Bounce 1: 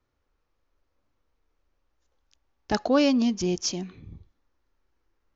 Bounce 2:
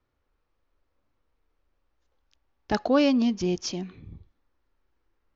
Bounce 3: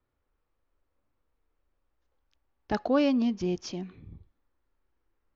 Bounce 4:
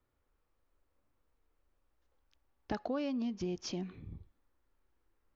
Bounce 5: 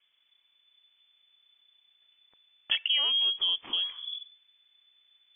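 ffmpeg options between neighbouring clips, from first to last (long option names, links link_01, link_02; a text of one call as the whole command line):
ffmpeg -i in.wav -af "lowpass=4700" out.wav
ffmpeg -i in.wav -af "highshelf=frequency=4500:gain=-9,volume=-3dB" out.wav
ffmpeg -i in.wav -af "acompressor=threshold=-34dB:ratio=5" out.wav
ffmpeg -i in.wav -af "lowpass=frequency=3000:width_type=q:width=0.5098,lowpass=frequency=3000:width_type=q:width=0.6013,lowpass=frequency=3000:width_type=q:width=0.9,lowpass=frequency=3000:width_type=q:width=2.563,afreqshift=-3500,volume=8.5dB" out.wav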